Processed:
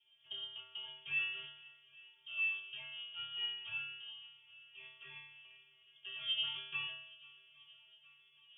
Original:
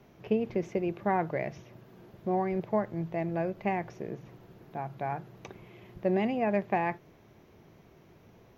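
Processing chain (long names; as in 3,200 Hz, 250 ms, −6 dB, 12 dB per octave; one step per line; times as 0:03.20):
running median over 25 samples
parametric band 1,500 Hz −2 dB
tuned comb filter 250 Hz, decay 0.82 s, mix 100%
voice inversion scrambler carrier 3,400 Hz
on a send: feedback echo with a long and a short gap by turns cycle 817 ms, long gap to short 1.5 to 1, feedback 63%, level −23 dB
on the sum: level +9 dB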